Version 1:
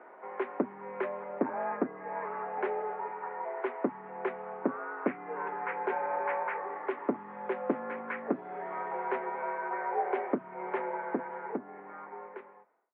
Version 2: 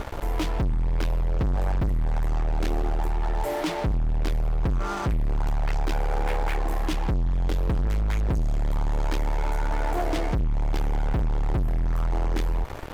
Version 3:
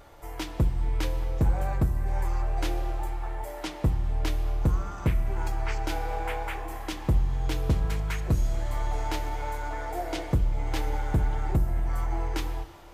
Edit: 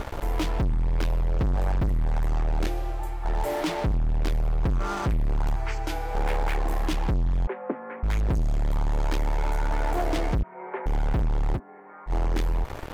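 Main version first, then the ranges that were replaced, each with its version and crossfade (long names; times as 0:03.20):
2
0:02.67–0:03.25: punch in from 3
0:05.56–0:06.15: punch in from 3
0:07.47–0:08.03: punch in from 1
0:10.43–0:10.86: punch in from 1
0:11.57–0:12.09: punch in from 1, crossfade 0.06 s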